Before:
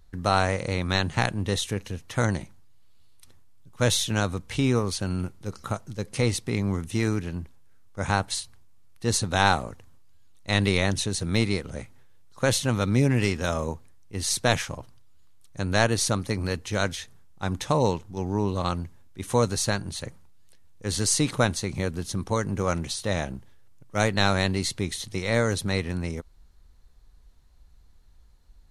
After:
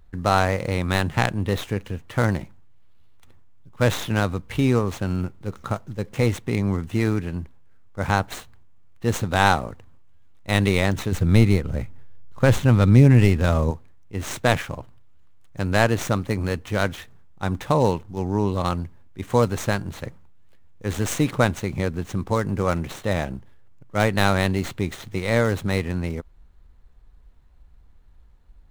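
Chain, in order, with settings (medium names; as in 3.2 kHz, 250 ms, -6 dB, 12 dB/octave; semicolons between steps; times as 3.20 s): median filter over 9 samples; 11.12–13.71 s: bass shelf 160 Hz +11 dB; trim +3.5 dB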